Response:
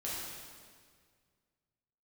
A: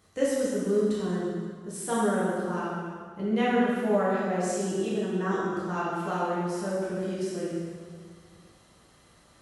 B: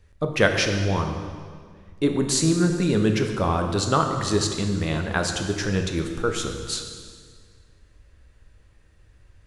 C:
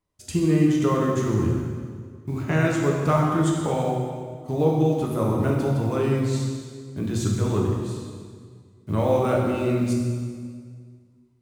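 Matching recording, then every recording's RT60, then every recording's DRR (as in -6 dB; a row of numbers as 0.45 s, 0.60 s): A; 1.9 s, 1.9 s, 1.9 s; -8.0 dB, 4.0 dB, -2.0 dB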